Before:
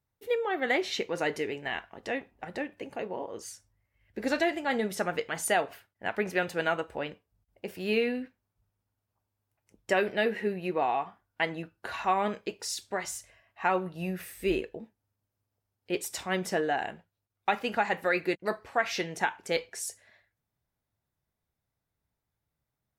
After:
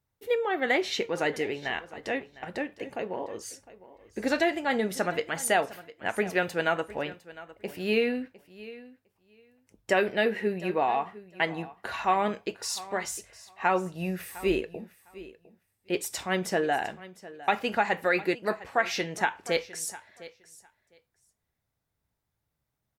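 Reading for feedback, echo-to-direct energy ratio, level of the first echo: 15%, -18.0 dB, -18.0 dB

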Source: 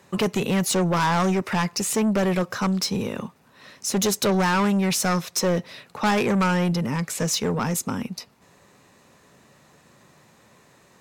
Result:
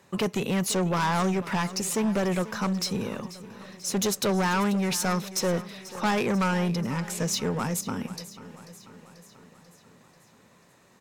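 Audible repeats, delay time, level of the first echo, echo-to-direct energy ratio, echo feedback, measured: 5, 0.489 s, -16.0 dB, -14.0 dB, 59%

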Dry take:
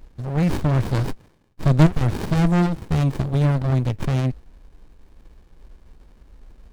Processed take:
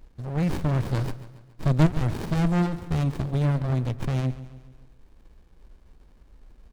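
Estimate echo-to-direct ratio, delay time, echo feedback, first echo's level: -14.0 dB, 0.139 s, 51%, -15.5 dB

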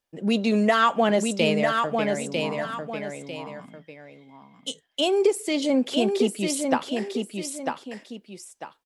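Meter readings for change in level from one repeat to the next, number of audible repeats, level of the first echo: -9.5 dB, 2, -4.5 dB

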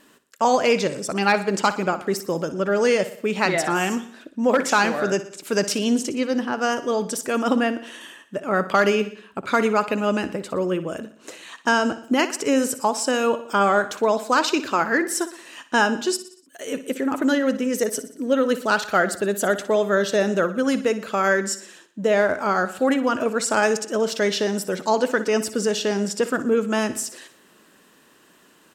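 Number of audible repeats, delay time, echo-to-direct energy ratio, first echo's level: 4, 60 ms, -12.5 dB, -14.0 dB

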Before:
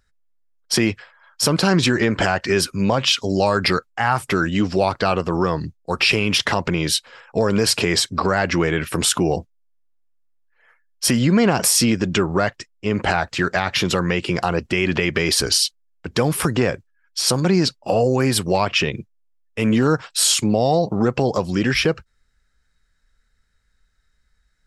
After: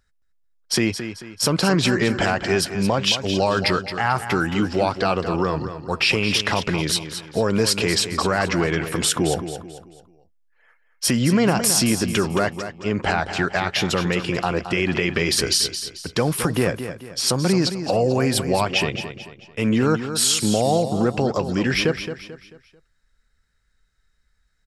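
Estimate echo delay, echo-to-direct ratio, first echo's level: 0.22 s, -9.5 dB, -10.0 dB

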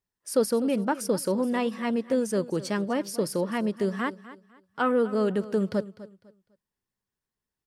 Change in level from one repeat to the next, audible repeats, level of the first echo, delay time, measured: -11.5 dB, 2, -16.5 dB, 0.251 s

